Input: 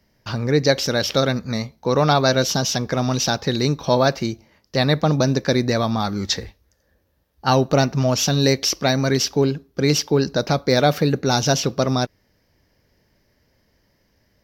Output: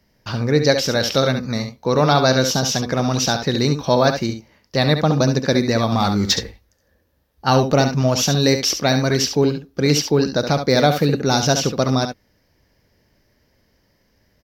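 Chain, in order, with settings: tapped delay 69/73 ms -8.5/-19 dB; 5.92–6.39 sample leveller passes 1; gain +1 dB

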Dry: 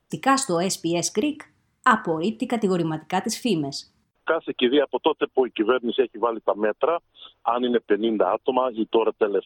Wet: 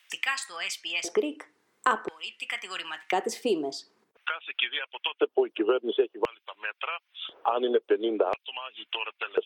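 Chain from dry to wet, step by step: LFO high-pass square 0.48 Hz 420–2300 Hz; three-band squash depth 70%; gain -7 dB

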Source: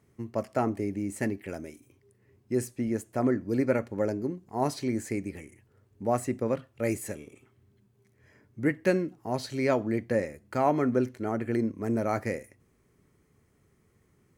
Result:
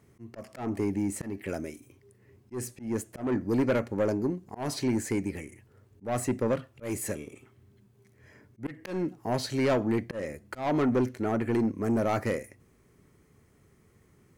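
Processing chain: soft clip -24.5 dBFS, distortion -11 dB; auto swell 0.197 s; gain +4.5 dB

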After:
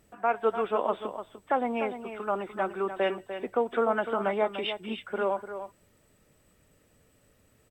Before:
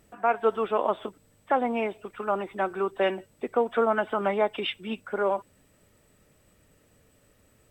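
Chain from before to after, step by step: echo 0.297 s -10 dB; gain -2.5 dB

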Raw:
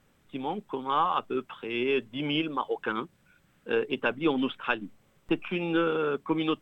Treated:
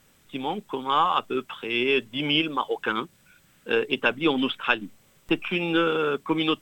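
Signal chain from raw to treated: high shelf 2800 Hz +11.5 dB; gain +2.5 dB

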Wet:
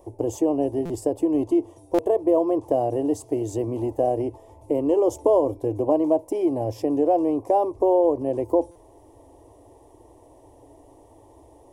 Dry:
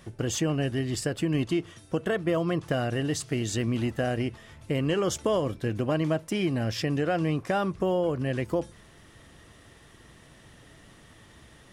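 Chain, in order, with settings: EQ curve 110 Hz 0 dB, 190 Hz -27 dB, 280 Hz +7 dB, 960 Hz +9 dB, 1400 Hz -26 dB, 2200 Hz -16 dB, 3900 Hz -18 dB, 5900 Hz -9 dB, 11000 Hz -1 dB; stuck buffer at 0.85/1.94/8.71, samples 256, times 7

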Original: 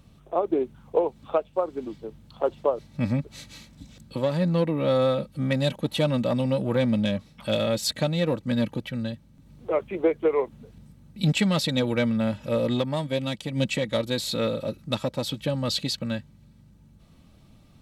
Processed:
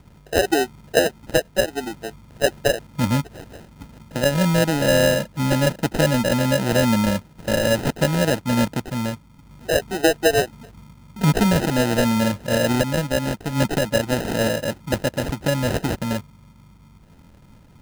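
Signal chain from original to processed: sample-and-hold 39×; gain +5 dB

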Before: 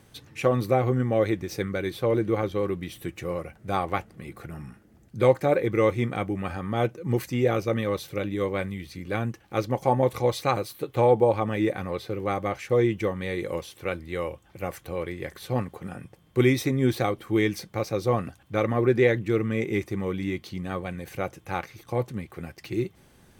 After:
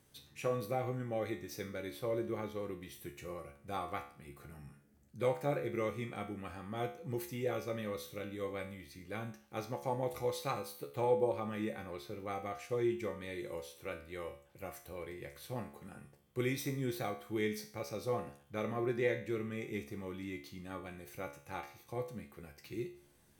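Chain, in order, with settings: high shelf 6200 Hz +8.5 dB; resonator 71 Hz, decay 0.47 s, harmonics all, mix 80%; gain -5 dB

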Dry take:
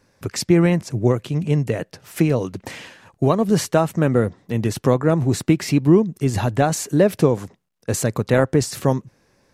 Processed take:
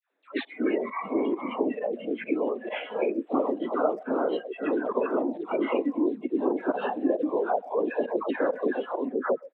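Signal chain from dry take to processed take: reverse delay 0.441 s, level -4.5 dB; spectral repair 0.83–1.48, 830–2400 Hz after; LPC vocoder at 8 kHz whisper; limiter -9 dBFS, peak gain reduction 7.5 dB; compressor 16:1, threshold -22 dBFS, peak gain reduction 10 dB; dispersion lows, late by 0.122 s, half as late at 940 Hz; pump 134 bpm, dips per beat 1, -19 dB, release 72 ms; speakerphone echo 0.13 s, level -16 dB; spectral noise reduction 18 dB; elliptic high-pass 260 Hz, stop band 60 dB; gain +4 dB

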